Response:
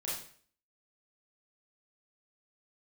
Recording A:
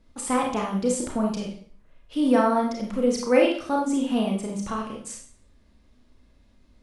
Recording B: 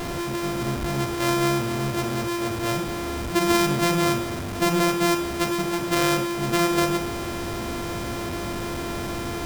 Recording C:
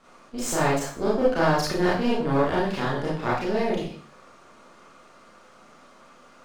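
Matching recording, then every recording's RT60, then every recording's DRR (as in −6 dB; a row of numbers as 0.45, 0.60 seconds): C; 0.50, 0.50, 0.50 seconds; −0.5, 7.0, −7.5 decibels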